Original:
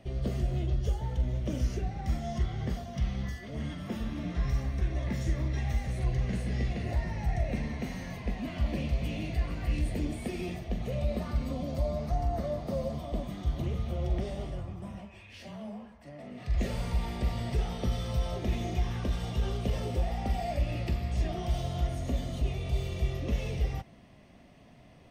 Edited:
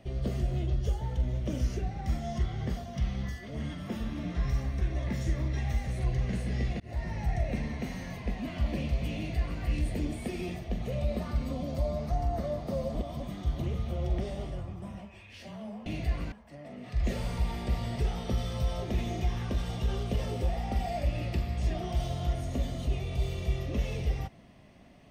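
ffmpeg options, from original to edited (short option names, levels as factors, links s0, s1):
-filter_complex "[0:a]asplit=6[s0][s1][s2][s3][s4][s5];[s0]atrim=end=6.8,asetpts=PTS-STARTPTS,afade=t=out:st=6.796:d=0.004:c=hsin[s6];[s1]atrim=start=6.8:end=12.952,asetpts=PTS-STARTPTS,afade=t=in:d=0.4:c=qsin[s7];[s2]atrim=start=12.948:end=13.202,asetpts=PTS-STARTPTS,areverse[s8];[s3]atrim=start=13.198:end=15.862[s9];[s4]atrim=start=9.158:end=9.622[s10];[s5]atrim=start=15.858[s11];[s6][s7]concat=n=2:v=0:a=1[s12];[s12][s8]acrossfade=d=0.004:c1=hsin:c2=hsin[s13];[s13][s9]acrossfade=d=0.004:c1=hsin:c2=hsin[s14];[s14][s10]acrossfade=d=0.004:c1=hsin:c2=hsin[s15];[s15][s11]acrossfade=d=0.004:c1=hsin:c2=hsin"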